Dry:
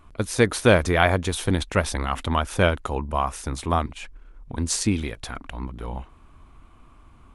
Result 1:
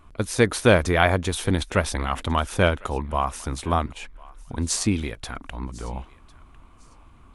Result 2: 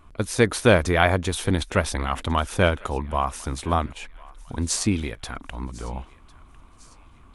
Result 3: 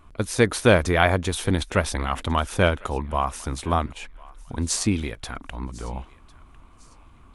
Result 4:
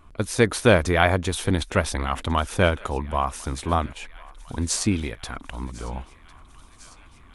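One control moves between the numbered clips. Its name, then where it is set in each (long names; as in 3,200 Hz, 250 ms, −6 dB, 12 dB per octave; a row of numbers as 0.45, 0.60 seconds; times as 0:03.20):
feedback echo with a high-pass in the loop, feedback: 21, 48, 32, 77%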